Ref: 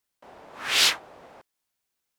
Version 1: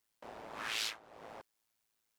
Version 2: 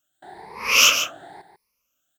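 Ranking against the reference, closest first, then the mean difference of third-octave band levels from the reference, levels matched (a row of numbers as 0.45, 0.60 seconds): 2, 1; 5.5, 9.0 decibels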